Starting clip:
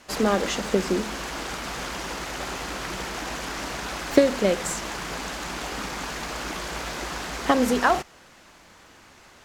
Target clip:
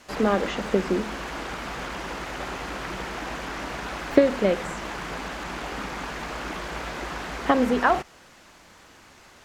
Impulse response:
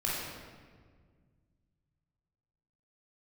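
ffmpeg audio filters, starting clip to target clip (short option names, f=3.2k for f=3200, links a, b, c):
-filter_complex "[0:a]acrossover=split=3200[a][b];[b]acompressor=threshold=-46dB:ratio=4:attack=1:release=60[c];[a][c]amix=inputs=2:normalize=0"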